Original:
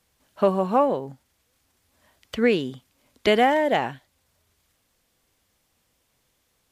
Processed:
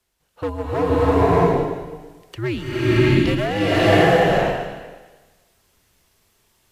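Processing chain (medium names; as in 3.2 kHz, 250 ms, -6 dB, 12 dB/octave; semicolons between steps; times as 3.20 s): frequency shift -110 Hz; overload inside the chain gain 14.5 dB; swelling reverb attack 640 ms, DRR -11 dB; trim -4 dB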